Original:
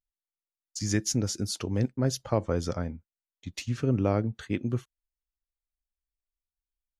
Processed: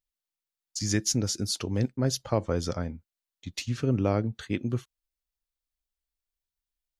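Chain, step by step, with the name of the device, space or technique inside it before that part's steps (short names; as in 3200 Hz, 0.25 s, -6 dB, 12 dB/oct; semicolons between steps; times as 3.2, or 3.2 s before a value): presence and air boost (bell 4100 Hz +4 dB 1.1 oct; high shelf 11000 Hz +4.5 dB)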